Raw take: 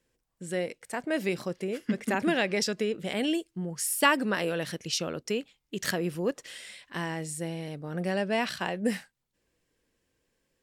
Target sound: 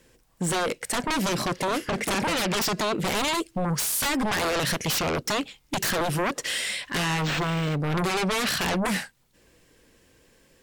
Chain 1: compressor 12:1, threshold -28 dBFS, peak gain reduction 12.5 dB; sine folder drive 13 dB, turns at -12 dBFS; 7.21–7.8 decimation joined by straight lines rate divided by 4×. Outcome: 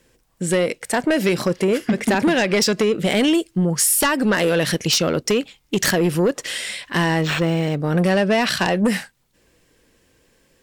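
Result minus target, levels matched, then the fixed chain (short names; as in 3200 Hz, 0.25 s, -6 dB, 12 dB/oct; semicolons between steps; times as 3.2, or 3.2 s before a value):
sine folder: distortion -22 dB
compressor 12:1, threshold -28 dBFS, peak gain reduction 12.5 dB; sine folder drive 13 dB, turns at -22 dBFS; 7.21–7.8 decimation joined by straight lines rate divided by 4×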